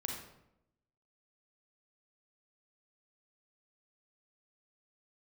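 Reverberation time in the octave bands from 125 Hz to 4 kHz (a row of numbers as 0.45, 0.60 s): 1.0, 1.0, 0.90, 0.75, 0.65, 0.55 s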